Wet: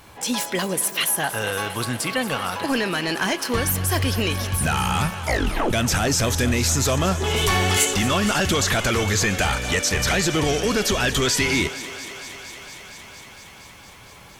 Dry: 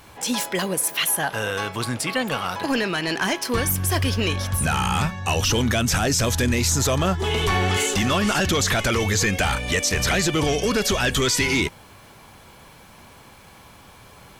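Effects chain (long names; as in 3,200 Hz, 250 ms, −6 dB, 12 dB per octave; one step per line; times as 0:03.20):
0:05.18: tape stop 0.55 s
0:07.36–0:07.85: high-shelf EQ 4,800 Hz +11 dB
feedback echo with a high-pass in the loop 231 ms, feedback 83%, high-pass 250 Hz, level −14.5 dB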